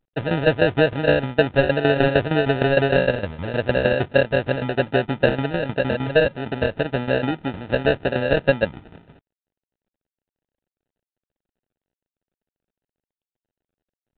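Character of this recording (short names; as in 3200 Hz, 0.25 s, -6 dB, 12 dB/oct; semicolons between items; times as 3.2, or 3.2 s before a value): tremolo saw down 6.5 Hz, depth 75%; aliases and images of a low sample rate 1100 Hz, jitter 0%; µ-law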